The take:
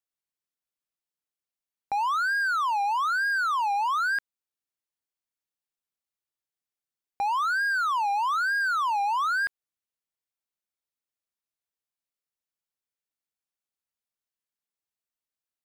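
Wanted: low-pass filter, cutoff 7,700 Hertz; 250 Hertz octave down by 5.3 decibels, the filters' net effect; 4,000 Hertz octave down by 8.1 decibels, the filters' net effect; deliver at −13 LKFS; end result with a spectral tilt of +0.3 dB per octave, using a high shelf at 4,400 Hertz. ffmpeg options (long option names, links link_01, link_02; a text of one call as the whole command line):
ffmpeg -i in.wav -af "lowpass=7700,equalizer=frequency=250:width_type=o:gain=-7.5,equalizer=frequency=4000:width_type=o:gain=-7,highshelf=frequency=4400:gain=-5.5,volume=13.5dB" out.wav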